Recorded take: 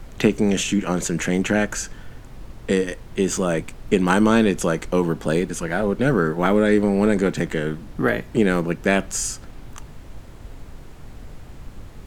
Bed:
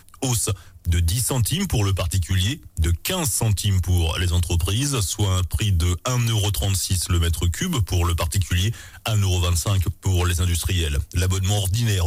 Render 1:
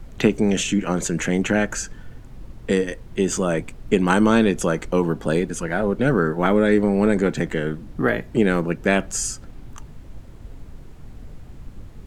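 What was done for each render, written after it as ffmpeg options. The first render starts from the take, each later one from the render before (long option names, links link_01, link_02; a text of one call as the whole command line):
ffmpeg -i in.wav -af "afftdn=noise_reduction=6:noise_floor=-41" out.wav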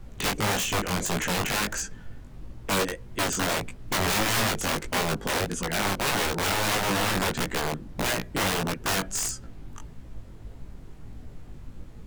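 ffmpeg -i in.wav -af "aeval=exprs='(mod(6.68*val(0)+1,2)-1)/6.68':channel_layout=same,flanger=delay=16:depth=5.2:speed=1.6" out.wav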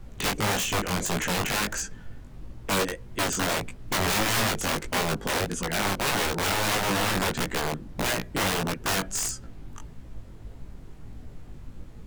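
ffmpeg -i in.wav -af anull out.wav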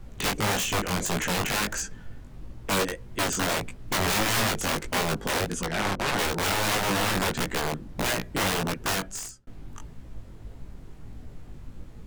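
ffmpeg -i in.wav -filter_complex "[0:a]asettb=1/sr,asplit=3[link_01][link_02][link_03];[link_01]atrim=end=5.664[link_04];[link_02]atrim=start=5.66:end=6.19,asetpts=PTS-STARTPTS,afade=type=in:duration=0.004:curve=qsin,afade=type=out:start_time=0.526:duration=0.004:curve=qsin,adynamicsmooth=sensitivity=4:basefreq=680[link_05];[link_03]atrim=start=6.186[link_06];[link_04][link_05]acrossfade=duration=0.004:curve1=hsin:curve2=qsin[link_07];[link_07][link_06]acrossfade=duration=0.004:curve1=qsin:curve2=hsin,asplit=2[link_08][link_09];[link_08]atrim=end=9.47,asetpts=PTS-STARTPTS,afade=type=out:start_time=8.86:duration=0.61[link_10];[link_09]atrim=start=9.47,asetpts=PTS-STARTPTS,afade=type=in:duration=0.004:curve=hsin[link_11];[link_10][link_11]concat=n=2:v=0:a=1" out.wav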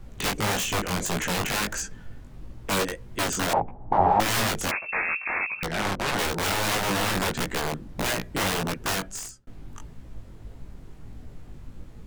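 ffmpeg -i in.wav -filter_complex "[0:a]asettb=1/sr,asplit=3[link_01][link_02][link_03];[link_01]atrim=end=3.534[link_04];[link_02]atrim=start=3.53:end=4.2,asetpts=PTS-STARTPTS,afade=type=in:duration=0.004:curve=qsin,afade=type=out:start_time=0.666:duration=0.004:curve=qsin,lowpass=frequency=820:width_type=q:width=8.4[link_05];[link_03]atrim=start=4.196[link_06];[link_04][link_05]acrossfade=duration=0.004:curve1=hsin:curve2=qsin[link_07];[link_07][link_06]acrossfade=duration=0.004:curve1=qsin:curve2=hsin,asettb=1/sr,asplit=3[link_08][link_09][link_10];[link_08]atrim=end=4.714[link_11];[link_09]atrim=start=4.71:end=5.63,asetpts=PTS-STARTPTS,afade=type=in:duration=0.004:curve=qsin,afade=type=out:start_time=0.916:duration=0.004:curve=qsin,lowpass=frequency=2300:width_type=q:width=0.5098,lowpass=frequency=2300:width_type=q:width=0.6013,lowpass=frequency=2300:width_type=q:width=0.9,lowpass=frequency=2300:width_type=q:width=2.563,afreqshift=-2700[link_12];[link_10]atrim=start=5.626[link_13];[link_11][link_12]acrossfade=duration=0.004:curve1=hsin:curve2=qsin[link_14];[link_14][link_13]acrossfade=duration=0.004:curve1=qsin:curve2=hsin" out.wav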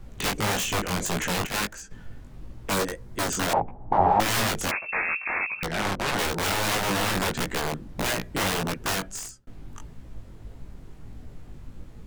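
ffmpeg -i in.wav -filter_complex "[0:a]asplit=3[link_01][link_02][link_03];[link_01]afade=type=out:start_time=1.45:duration=0.02[link_04];[link_02]agate=range=-10dB:threshold=-28dB:ratio=16:release=100:detection=peak,afade=type=in:start_time=1.45:duration=0.02,afade=type=out:start_time=1.9:duration=0.02[link_05];[link_03]afade=type=in:start_time=1.9:duration=0.02[link_06];[link_04][link_05][link_06]amix=inputs=3:normalize=0,asettb=1/sr,asplit=3[link_07][link_08][link_09];[link_07]atrim=end=2.734[link_10];[link_08]atrim=start=2.73:end=3.3,asetpts=PTS-STARTPTS,afade=type=in:duration=0.004:curve=qsin,afade=type=out:start_time=0.566:duration=0.004:curve=qsin,equalizer=frequency=2800:width_type=o:width=0.77:gain=-5.5[link_11];[link_09]atrim=start=3.296[link_12];[link_10][link_11]acrossfade=duration=0.004:curve1=hsin:curve2=qsin[link_13];[link_13][link_12]acrossfade=duration=0.004:curve1=qsin:curve2=hsin" out.wav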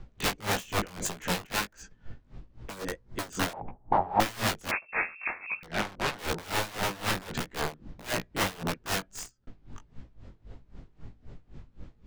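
ffmpeg -i in.wav -filter_complex "[0:a]acrossover=split=6700[link_01][link_02];[link_02]aeval=exprs='sgn(val(0))*max(abs(val(0))-0.00596,0)':channel_layout=same[link_03];[link_01][link_03]amix=inputs=2:normalize=0,aeval=exprs='val(0)*pow(10,-21*(0.5-0.5*cos(2*PI*3.8*n/s))/20)':channel_layout=same" out.wav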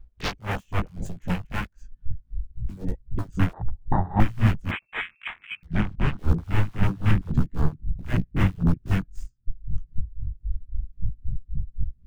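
ffmpeg -i in.wav -af "afwtdn=0.02,asubboost=boost=11.5:cutoff=170" out.wav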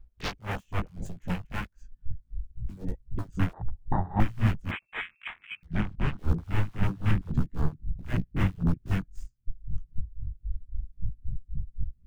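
ffmpeg -i in.wav -af "volume=-4.5dB" out.wav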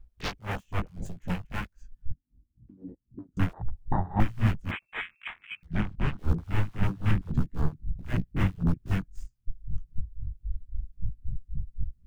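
ffmpeg -i in.wav -filter_complex "[0:a]asettb=1/sr,asplit=3[link_01][link_02][link_03];[link_01]atrim=end=2.134[link_04];[link_02]atrim=start=2.13:end=3.37,asetpts=PTS-STARTPTS,afade=type=in:duration=0.004:curve=qsin,afade=type=out:start_time=1.236:duration=0.004:curve=qsin,bandpass=frequency=280:width_type=q:width=3.2[link_05];[link_03]atrim=start=3.366[link_06];[link_04][link_05]acrossfade=duration=0.004:curve1=hsin:curve2=qsin[link_07];[link_07][link_06]acrossfade=duration=0.004:curve1=qsin:curve2=hsin" out.wav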